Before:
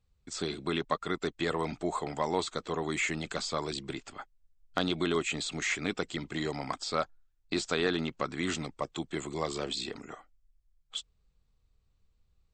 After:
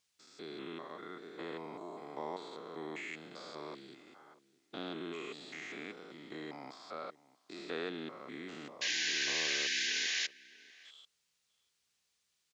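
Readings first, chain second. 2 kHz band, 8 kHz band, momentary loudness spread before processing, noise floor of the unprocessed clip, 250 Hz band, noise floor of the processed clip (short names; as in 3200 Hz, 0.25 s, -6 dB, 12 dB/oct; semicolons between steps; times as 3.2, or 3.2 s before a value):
-2.5 dB, -1.5 dB, 11 LU, -72 dBFS, -11.5 dB, -80 dBFS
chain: stepped spectrum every 0.2 s; HPF 260 Hz 12 dB/oct; added noise violet -55 dBFS; painted sound noise, 8.81–10.27, 1500–7200 Hz -24 dBFS; air absorption 120 m; outdoor echo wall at 110 m, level -19 dB; gain -6.5 dB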